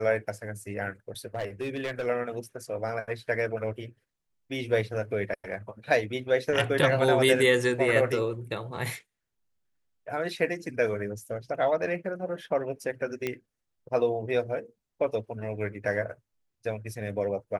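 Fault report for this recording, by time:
1.35–2.07 clipped -27 dBFS
13.27 pop -16 dBFS

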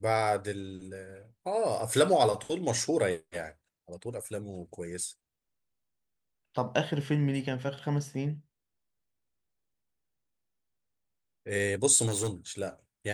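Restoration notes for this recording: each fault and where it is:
12.06–12.29 clipped -26 dBFS

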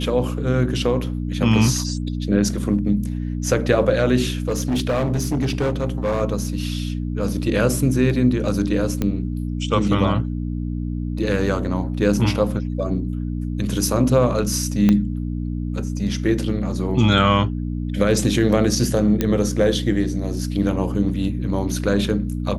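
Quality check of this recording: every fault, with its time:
hum 60 Hz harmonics 5 -25 dBFS
4.48–6.22 clipped -16.5 dBFS
9.02 pop -9 dBFS
14.89 pop -6 dBFS
19.21 pop -6 dBFS

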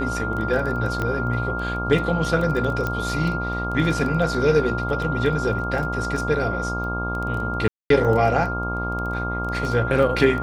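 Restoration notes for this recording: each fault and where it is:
buzz 60 Hz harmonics 22 -28 dBFS
crackle 10/s -26 dBFS
tone 1400 Hz -27 dBFS
1.02 pop -13 dBFS
2.87 pop -12 dBFS
7.68–7.9 gap 0.223 s

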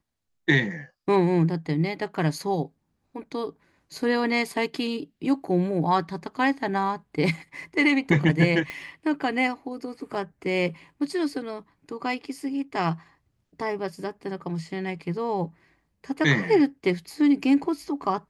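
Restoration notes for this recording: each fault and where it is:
8.7 pop -19 dBFS

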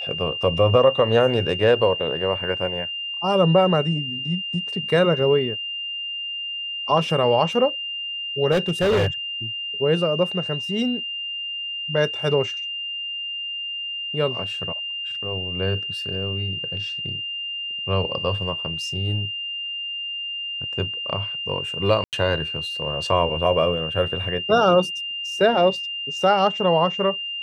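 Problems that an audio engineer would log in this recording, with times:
tone 2800 Hz -27 dBFS
8.51–9.08 clipped -15.5 dBFS
22.04–22.13 gap 88 ms

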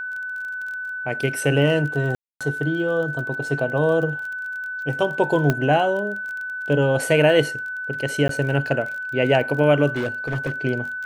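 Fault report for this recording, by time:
crackle 24/s -30 dBFS
tone 1500 Hz -27 dBFS
2.15–2.41 gap 0.256 s
5.5 pop -7 dBFS
8.28–8.29 gap
9.96–10.51 clipped -20 dBFS

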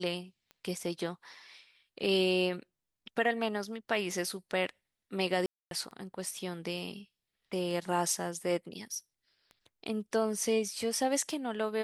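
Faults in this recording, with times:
tick 33 1/3 rpm -35 dBFS
5.46–5.71 gap 0.252 s

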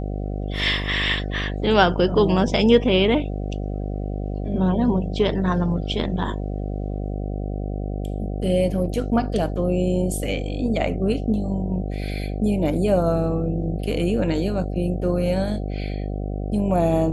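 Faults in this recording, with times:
buzz 50 Hz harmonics 15 -27 dBFS

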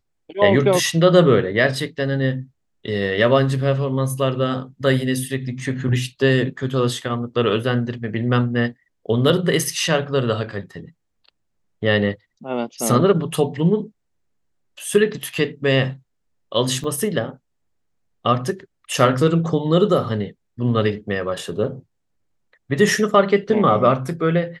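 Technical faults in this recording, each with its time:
16.84 gap 3.4 ms

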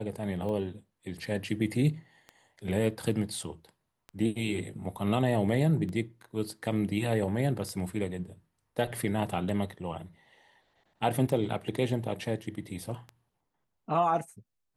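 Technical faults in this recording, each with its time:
tick 33 1/3 rpm -28 dBFS

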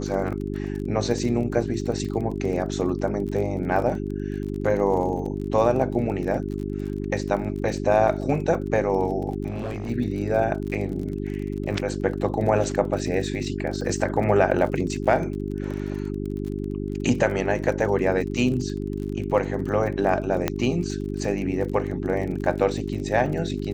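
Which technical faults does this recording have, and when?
crackle 37/s -32 dBFS
hum 50 Hz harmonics 8 -29 dBFS
9.5–9.91 clipped -26 dBFS
14.51 gap 4.5 ms
20.48 pop -8 dBFS

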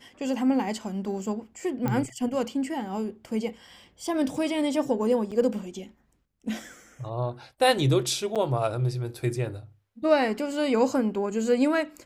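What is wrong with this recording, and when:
1.88 pop -15 dBFS
5.31–5.32 gap 6.5 ms
8.35–8.36 gap 7.1 ms

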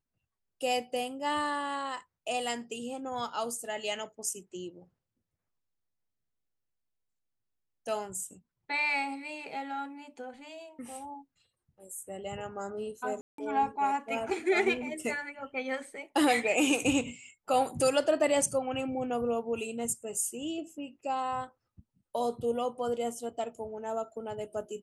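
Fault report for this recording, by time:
13.21–13.38 gap 0.173 s

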